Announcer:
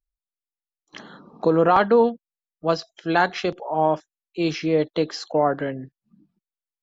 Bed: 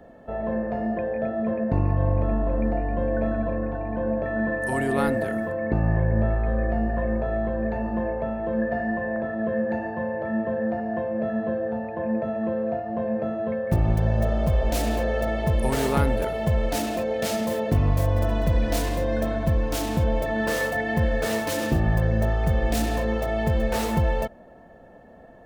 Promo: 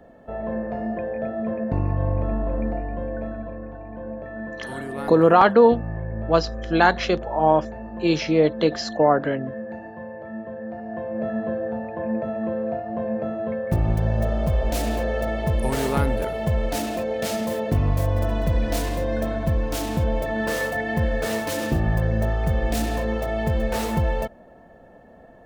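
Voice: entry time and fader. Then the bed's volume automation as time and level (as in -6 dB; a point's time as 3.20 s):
3.65 s, +2.5 dB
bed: 2.58 s -1 dB
3.55 s -8 dB
10.65 s -8 dB
11.24 s 0 dB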